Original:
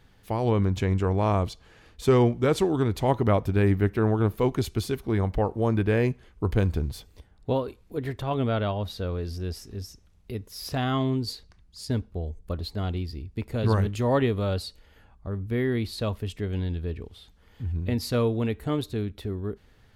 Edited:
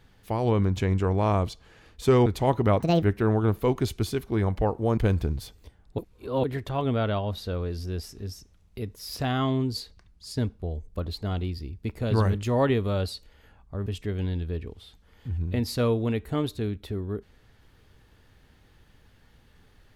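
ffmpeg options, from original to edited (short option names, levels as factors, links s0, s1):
-filter_complex "[0:a]asplit=8[s0][s1][s2][s3][s4][s5][s6][s7];[s0]atrim=end=2.262[s8];[s1]atrim=start=2.868:end=3.414[s9];[s2]atrim=start=3.41:end=3.79,asetpts=PTS-STARTPTS,asetrate=74529,aresample=44100[s10];[s3]atrim=start=3.786:end=5.742[s11];[s4]atrim=start=6.498:end=7.512[s12];[s5]atrim=start=7.508:end=7.962,asetpts=PTS-STARTPTS,areverse[s13];[s6]atrim=start=7.958:end=15.392[s14];[s7]atrim=start=16.208[s15];[s8][s9]acrossfade=d=0.004:c1=hsin:c2=hsin[s16];[s16][s10]acrossfade=d=0.004:c1=hsin:c2=hsin[s17];[s17][s11]acrossfade=d=0.004:c1=hsin:c2=hsin[s18];[s18][s12]acrossfade=d=0.004:c1=hsin:c2=hsin[s19];[s19][s13]acrossfade=d=0.004:c1=hsin:c2=hsin[s20];[s20][s14]acrossfade=d=0.004:c1=hsin:c2=hsin[s21];[s21][s15]acrossfade=d=0.004:c1=hsin:c2=hsin"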